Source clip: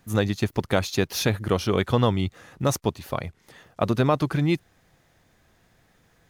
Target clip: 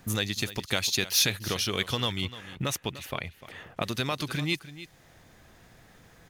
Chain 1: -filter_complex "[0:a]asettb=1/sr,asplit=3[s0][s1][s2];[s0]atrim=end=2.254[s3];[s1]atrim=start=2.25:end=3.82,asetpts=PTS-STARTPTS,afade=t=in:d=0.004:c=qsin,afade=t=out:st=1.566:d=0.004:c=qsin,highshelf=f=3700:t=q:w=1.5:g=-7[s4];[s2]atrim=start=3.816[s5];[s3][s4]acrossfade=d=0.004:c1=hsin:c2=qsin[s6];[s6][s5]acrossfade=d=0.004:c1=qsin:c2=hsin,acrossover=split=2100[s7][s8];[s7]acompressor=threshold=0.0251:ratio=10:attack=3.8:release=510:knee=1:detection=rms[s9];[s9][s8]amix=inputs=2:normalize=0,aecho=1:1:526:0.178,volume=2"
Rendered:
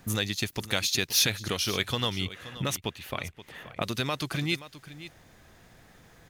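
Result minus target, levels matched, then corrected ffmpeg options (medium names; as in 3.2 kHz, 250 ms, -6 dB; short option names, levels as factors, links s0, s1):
echo 227 ms late
-filter_complex "[0:a]asettb=1/sr,asplit=3[s0][s1][s2];[s0]atrim=end=2.254[s3];[s1]atrim=start=2.25:end=3.82,asetpts=PTS-STARTPTS,afade=t=in:d=0.004:c=qsin,afade=t=out:st=1.566:d=0.004:c=qsin,highshelf=f=3700:t=q:w=1.5:g=-7[s4];[s2]atrim=start=3.816[s5];[s3][s4]acrossfade=d=0.004:c1=hsin:c2=qsin[s6];[s6][s5]acrossfade=d=0.004:c1=qsin:c2=hsin,acrossover=split=2100[s7][s8];[s7]acompressor=threshold=0.0251:ratio=10:attack=3.8:release=510:knee=1:detection=rms[s9];[s9][s8]amix=inputs=2:normalize=0,aecho=1:1:299:0.178,volume=2"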